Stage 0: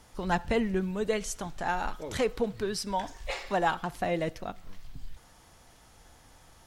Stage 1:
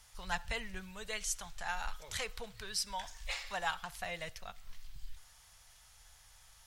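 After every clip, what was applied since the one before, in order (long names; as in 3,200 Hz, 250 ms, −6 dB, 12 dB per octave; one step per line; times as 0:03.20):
guitar amp tone stack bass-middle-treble 10-0-10
level +1 dB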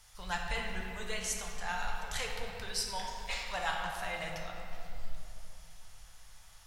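rectangular room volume 130 cubic metres, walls hard, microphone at 0.43 metres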